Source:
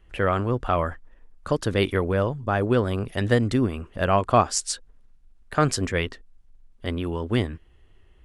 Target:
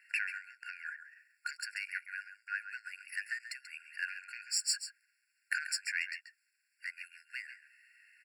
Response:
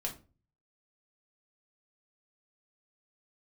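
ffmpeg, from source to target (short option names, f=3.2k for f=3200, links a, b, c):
-filter_complex "[0:a]bandreject=f=60:t=h:w=6,bandreject=f=120:t=h:w=6,bandreject=f=180:t=h:w=6,bandreject=f=240:t=h:w=6,acrossover=split=4300[a][b];[b]acrusher=bits=4:mode=log:mix=0:aa=0.000001[c];[a][c]amix=inputs=2:normalize=0,acompressor=threshold=-34dB:ratio=6,lowshelf=f=500:g=7,asoftclip=type=tanh:threshold=-22.5dB,asplit=2[d][e];[e]aecho=0:1:136:0.282[f];[d][f]amix=inputs=2:normalize=0,afftfilt=real='re*eq(mod(floor(b*sr/1024/1400),2),1)':imag='im*eq(mod(floor(b*sr/1024/1400),2),1)':win_size=1024:overlap=0.75,volume=9dB"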